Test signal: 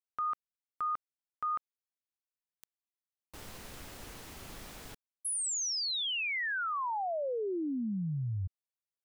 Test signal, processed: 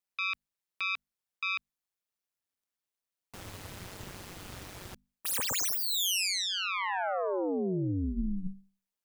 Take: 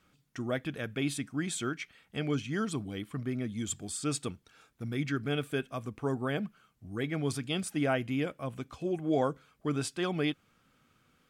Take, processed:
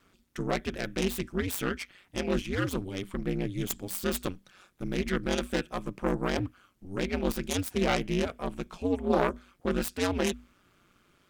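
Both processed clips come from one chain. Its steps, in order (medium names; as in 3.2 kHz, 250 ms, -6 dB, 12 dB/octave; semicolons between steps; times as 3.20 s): self-modulated delay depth 0.28 ms; hum notches 50/100/150 Hz; ring modulator 94 Hz; trim +6.5 dB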